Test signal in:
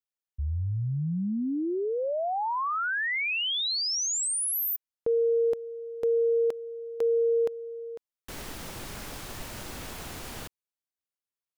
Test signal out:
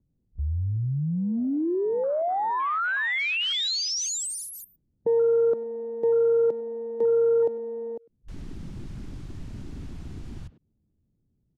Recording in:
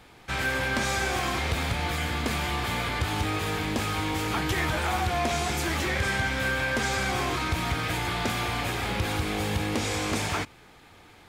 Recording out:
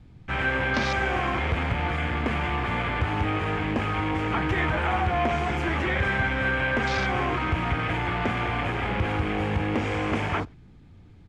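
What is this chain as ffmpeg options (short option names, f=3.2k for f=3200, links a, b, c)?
-filter_complex "[0:a]asplit=2[a][b];[b]adelay=100,highpass=300,lowpass=3.4k,asoftclip=type=hard:threshold=-27.5dB,volume=-17dB[c];[a][c]amix=inputs=2:normalize=0,afwtdn=0.02,lowpass=7.3k,acrossover=split=230|1400[d][e][f];[d]acompressor=mode=upward:threshold=-33dB:ratio=2.5:attack=0.45:release=24:knee=2.83:detection=peak[g];[g][e][f]amix=inputs=3:normalize=0,volume=2.5dB"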